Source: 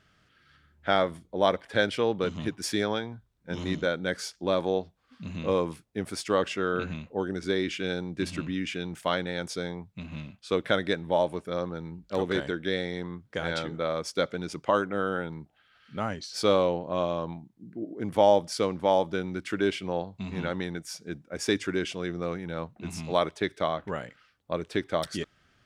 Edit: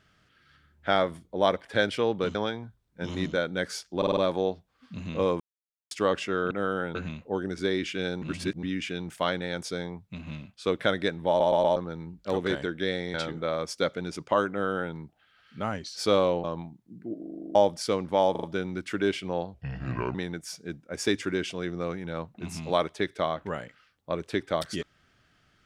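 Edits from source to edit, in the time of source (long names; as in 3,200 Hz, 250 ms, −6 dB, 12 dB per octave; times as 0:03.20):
0:02.35–0:02.84: remove
0:04.46: stutter 0.05 s, 5 plays
0:05.69–0:06.20: silence
0:08.07–0:08.48: reverse
0:11.13: stutter in place 0.12 s, 4 plays
0:12.99–0:13.51: remove
0:14.87–0:15.31: duplicate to 0:06.80
0:16.81–0:17.15: remove
0:17.90: stutter in place 0.04 s, 9 plays
0:19.02: stutter 0.04 s, 4 plays
0:20.13–0:20.56: play speed 71%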